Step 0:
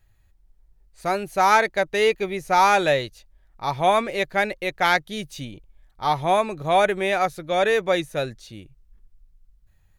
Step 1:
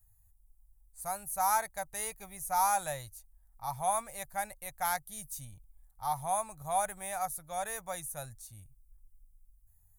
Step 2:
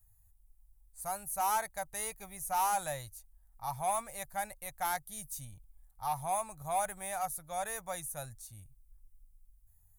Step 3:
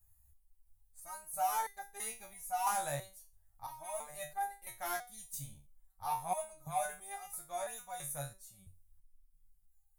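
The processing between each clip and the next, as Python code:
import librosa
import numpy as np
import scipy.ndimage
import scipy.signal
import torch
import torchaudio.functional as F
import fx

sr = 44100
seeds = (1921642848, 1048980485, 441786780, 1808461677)

y1 = fx.curve_eq(x, sr, hz=(100.0, 380.0, 790.0, 2900.0, 4600.0, 9600.0), db=(0, -27, -3, -18, -9, 15))
y1 = F.gain(torch.from_numpy(y1), -6.0).numpy()
y2 = 10.0 ** (-24.0 / 20.0) * np.tanh(y1 / 10.0 ** (-24.0 / 20.0))
y3 = fx.resonator_held(y2, sr, hz=3.0, low_hz=71.0, high_hz=400.0)
y3 = F.gain(torch.from_numpy(y3), 7.5).numpy()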